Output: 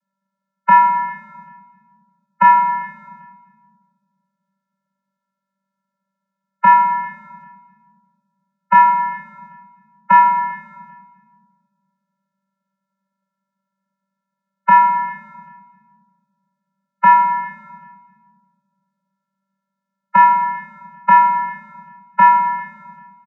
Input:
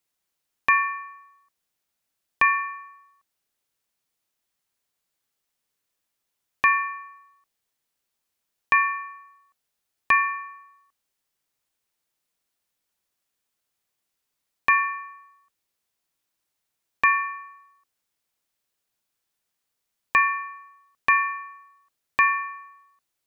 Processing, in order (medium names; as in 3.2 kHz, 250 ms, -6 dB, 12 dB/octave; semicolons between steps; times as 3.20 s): resonant high shelf 2.3 kHz -7.5 dB, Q 3; formant shift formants -3 st; feedback delay 395 ms, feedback 24%, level -23 dB; vocoder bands 16, square 194 Hz; on a send at -4 dB: reverberation RT60 1.6 s, pre-delay 5 ms; on the sum: trim +5.5 dB